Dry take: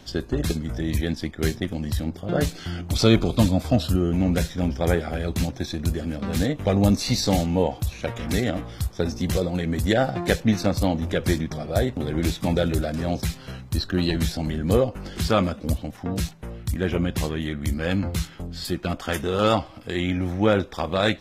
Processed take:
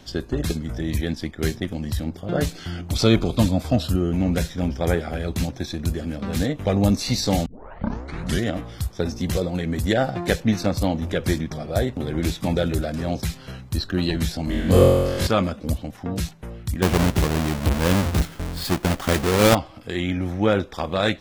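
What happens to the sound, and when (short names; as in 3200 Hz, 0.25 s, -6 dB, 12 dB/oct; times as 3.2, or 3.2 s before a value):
7.46 tape start 1.03 s
14.45–15.27 flutter echo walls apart 3.8 m, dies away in 1.3 s
16.82–19.55 half-waves squared off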